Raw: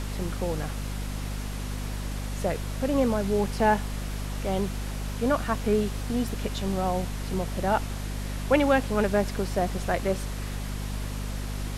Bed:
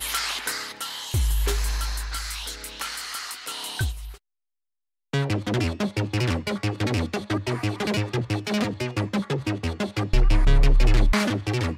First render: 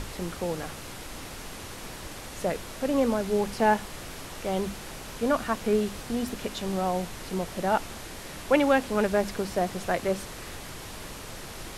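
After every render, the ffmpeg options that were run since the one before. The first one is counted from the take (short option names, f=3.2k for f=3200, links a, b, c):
-af "bandreject=f=50:t=h:w=6,bandreject=f=100:t=h:w=6,bandreject=f=150:t=h:w=6,bandreject=f=200:t=h:w=6,bandreject=f=250:t=h:w=6"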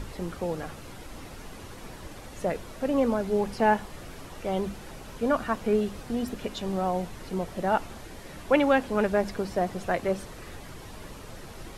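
-af "afftdn=nr=8:nf=-41"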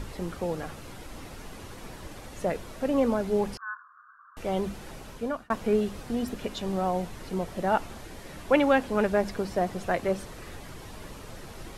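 -filter_complex "[0:a]asettb=1/sr,asplit=3[a][b][c];[a]atrim=end=3.574[d];[b]atrim=start=3.57:end=4.37,asetpts=PTS-STARTPTS,afade=t=in:d=0.004:c=qsin,afade=t=out:st=0.796:d=0.004:c=qsin,asuperpass=centerf=1300:order=12:qfactor=2.4[e];[c]atrim=start=4.366[f];[d][e]acrossfade=d=0.004:c1=hsin:c2=qsin[g];[g][f]acrossfade=d=0.004:c1=qsin:c2=hsin,asplit=2[h][i];[h]atrim=end=5.5,asetpts=PTS-STARTPTS,afade=t=out:st=4.88:d=0.62:c=qsin[j];[i]atrim=start=5.5,asetpts=PTS-STARTPTS,afade=t=in:d=0.004:c=hsin[k];[j][k]concat=n=2:v=0:a=1"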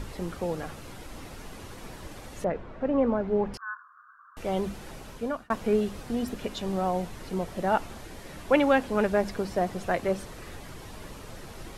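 -filter_complex "[0:a]asettb=1/sr,asplit=3[a][b][c];[a]atrim=end=2.444[d];[b]atrim=start=2.44:end=3.54,asetpts=PTS-STARTPTS,afade=t=in:d=0.004:c=qsin,afade=t=out:st=1.096:d=0.004:c=qsin,lowpass=1.8k[e];[c]atrim=start=3.536[f];[d][e]acrossfade=d=0.004:c1=hsin:c2=qsin[g];[g][f]acrossfade=d=0.004:c1=qsin:c2=hsin"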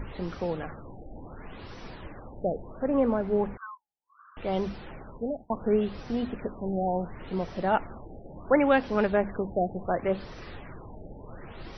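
-af "afftfilt=real='re*lt(b*sr/1024,830*pow(6100/830,0.5+0.5*sin(2*PI*0.7*pts/sr)))':imag='im*lt(b*sr/1024,830*pow(6100/830,0.5+0.5*sin(2*PI*0.7*pts/sr)))':win_size=1024:overlap=0.75"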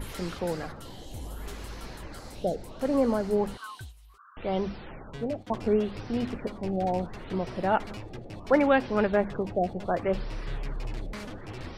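-filter_complex "[1:a]volume=-17.5dB[a];[0:a][a]amix=inputs=2:normalize=0"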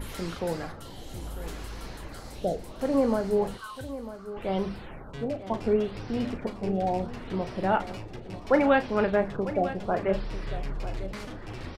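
-filter_complex "[0:a]asplit=2[a][b];[b]adelay=36,volume=-10.5dB[c];[a][c]amix=inputs=2:normalize=0,aecho=1:1:948:0.211"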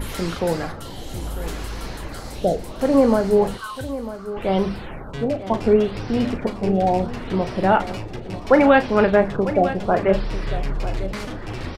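-af "volume=8.5dB,alimiter=limit=-3dB:level=0:latency=1"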